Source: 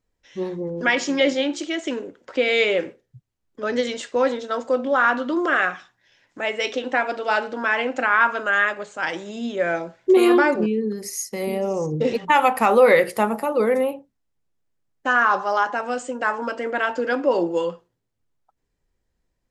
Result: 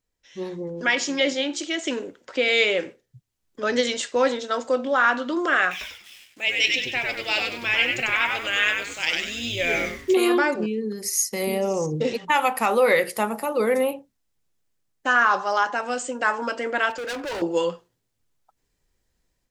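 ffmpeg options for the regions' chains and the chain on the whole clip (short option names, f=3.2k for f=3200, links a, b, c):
-filter_complex "[0:a]asettb=1/sr,asplit=3[a][b][c];[a]atrim=end=5.714[d];[b]atrim=start=5.71:end=10.15,asetpts=PTS-STARTPTS,afade=t=in:d=0.004:c=qsin,afade=t=out:st=4.436:d=0.004:c=qsin,highshelf=f=1.9k:t=q:w=3:g=8.5,acrusher=bits=7:mix=0:aa=0.5,asplit=5[e][f][g][h][i];[f]adelay=97,afreqshift=-130,volume=-3.5dB[j];[g]adelay=194,afreqshift=-260,volume=-12.9dB[k];[h]adelay=291,afreqshift=-390,volume=-22.2dB[l];[i]adelay=388,afreqshift=-520,volume=-31.6dB[m];[e][j][k][l][m]amix=inputs=5:normalize=0,atrim=end_sample=195804[n];[c]atrim=start=10.146[o];[d][n]acrossfade=d=0.004:c1=hsin:c2=qsin[p];[p][o]acrossfade=d=0.004:c1=qsin:c2=hsin,asettb=1/sr,asplit=3[q][r][s];[q]atrim=end=16.904[t];[r]atrim=start=16.9:end=17.42,asetpts=PTS-STARTPTS,afade=t=in:d=0.004:c=qsin,afade=t=out:st=0.516:d=0.004:c=qsin,bass=f=250:g=-10,treble=f=4k:g=-2,asoftclip=type=hard:threshold=-27.5dB[u];[s]atrim=start=17.416[v];[t][u]acrossfade=d=0.004:c1=hsin:c2=qsin[w];[w][v]acrossfade=d=0.004:c1=qsin:c2=hsin,highshelf=f=2.3k:g=8.5,dynaudnorm=f=290:g=3:m=7.5dB,volume=-6.5dB"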